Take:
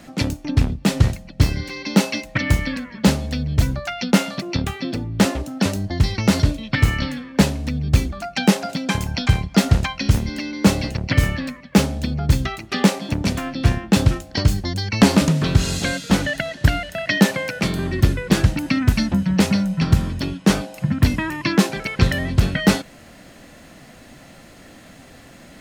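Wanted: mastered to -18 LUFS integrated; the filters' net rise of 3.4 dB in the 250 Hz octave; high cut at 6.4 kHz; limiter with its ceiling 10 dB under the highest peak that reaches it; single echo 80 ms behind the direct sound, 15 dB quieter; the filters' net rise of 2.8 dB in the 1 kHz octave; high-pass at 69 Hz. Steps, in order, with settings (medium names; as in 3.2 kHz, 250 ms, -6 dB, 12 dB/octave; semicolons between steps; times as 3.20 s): high-pass 69 Hz; low-pass 6.4 kHz; peaking EQ 250 Hz +4.5 dB; peaking EQ 1 kHz +3.5 dB; peak limiter -6.5 dBFS; delay 80 ms -15 dB; trim +2.5 dB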